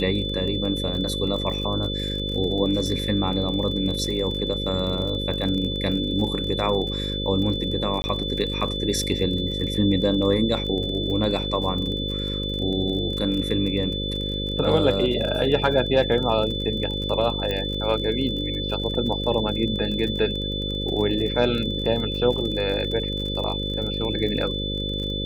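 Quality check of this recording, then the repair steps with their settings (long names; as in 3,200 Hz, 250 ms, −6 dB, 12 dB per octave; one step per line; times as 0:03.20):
mains buzz 50 Hz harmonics 11 −29 dBFS
surface crackle 36 per second −30 dBFS
whistle 3,500 Hz −29 dBFS
0:08.02–0:08.04: drop-out 20 ms
0:17.51: click −14 dBFS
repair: click removal
hum removal 50 Hz, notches 11
notch filter 3,500 Hz, Q 30
repair the gap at 0:08.02, 20 ms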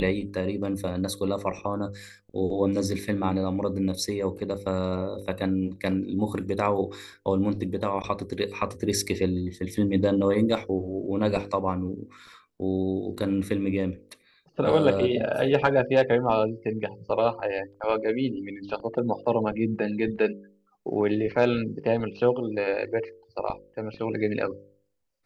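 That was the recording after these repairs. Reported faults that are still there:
none of them is left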